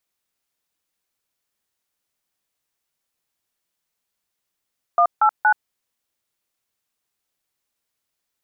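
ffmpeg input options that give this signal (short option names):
-f lavfi -i "aevalsrc='0.188*clip(min(mod(t,0.234),0.078-mod(t,0.234))/0.002,0,1)*(eq(floor(t/0.234),0)*(sin(2*PI*697*mod(t,0.234))+sin(2*PI*1209*mod(t,0.234)))+eq(floor(t/0.234),1)*(sin(2*PI*852*mod(t,0.234))+sin(2*PI*1336*mod(t,0.234)))+eq(floor(t/0.234),2)*(sin(2*PI*852*mod(t,0.234))+sin(2*PI*1477*mod(t,0.234))))':d=0.702:s=44100"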